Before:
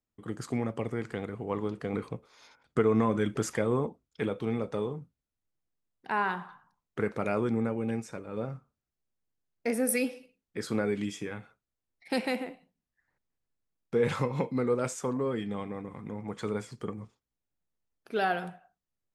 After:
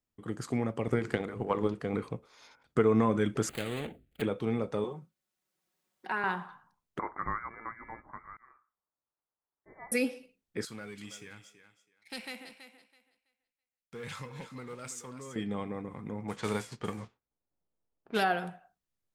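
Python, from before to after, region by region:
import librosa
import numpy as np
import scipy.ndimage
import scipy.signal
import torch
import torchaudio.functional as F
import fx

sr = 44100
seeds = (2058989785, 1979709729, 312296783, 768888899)

y = fx.chain(x, sr, fx.hum_notches(base_hz=50, count=10),
    fx.transient(attack_db=10, sustain_db=4), at=(0.87, 1.74))
y = fx.chain(y, sr, fx.median_filter(points=25),
    fx.fixed_phaser(hz=2400.0, stages=4),
    fx.spectral_comp(ratio=2.0), at=(3.49, 4.22))
y = fx.chain(y, sr, fx.highpass(hz=390.0, slope=6),
    fx.comb(ms=5.4, depth=0.73),
    fx.band_squash(depth_pct=40), at=(4.84, 6.24))
y = fx.chain(y, sr, fx.auto_swell(attack_ms=372.0),
    fx.highpass_res(hz=1400.0, q=1.6),
    fx.freq_invert(carrier_hz=2500), at=(6.99, 9.92))
y = fx.chain(y, sr, fx.leveller(passes=1),
    fx.tone_stack(knobs='5-5-5'),
    fx.echo_thinned(ms=328, feedback_pct=21, hz=220.0, wet_db=-10.5), at=(10.65, 15.36))
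y = fx.envelope_flatten(y, sr, power=0.6, at=(16.28, 18.22), fade=0.02)
y = fx.env_lowpass(y, sr, base_hz=760.0, full_db=-32.0, at=(16.28, 18.22), fade=0.02)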